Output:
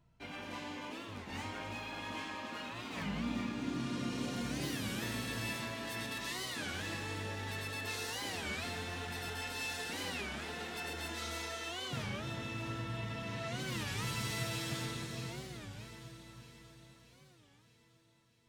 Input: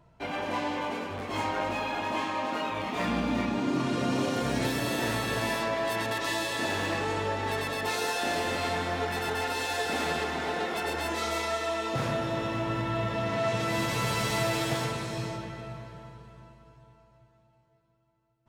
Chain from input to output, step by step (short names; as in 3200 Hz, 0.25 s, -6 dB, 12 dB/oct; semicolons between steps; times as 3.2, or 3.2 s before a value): bell 680 Hz -10 dB 2.2 oct; resonator 240 Hz, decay 1.2 s, mix 80%; echo with dull and thin repeats by turns 0.315 s, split 1200 Hz, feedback 74%, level -8.5 dB; record warp 33 1/3 rpm, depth 250 cents; gain +6.5 dB